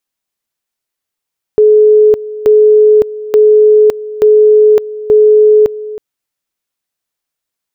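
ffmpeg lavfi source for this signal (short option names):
-f lavfi -i "aevalsrc='pow(10,(-2.5-17*gte(mod(t,0.88),0.56))/20)*sin(2*PI*426*t)':d=4.4:s=44100"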